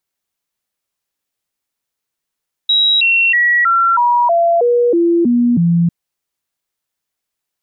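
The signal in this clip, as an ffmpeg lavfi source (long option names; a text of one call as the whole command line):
ffmpeg -f lavfi -i "aevalsrc='0.355*clip(min(mod(t,0.32),0.32-mod(t,0.32))/0.005,0,1)*sin(2*PI*3850*pow(2,-floor(t/0.32)/2)*mod(t,0.32))':duration=3.2:sample_rate=44100" out.wav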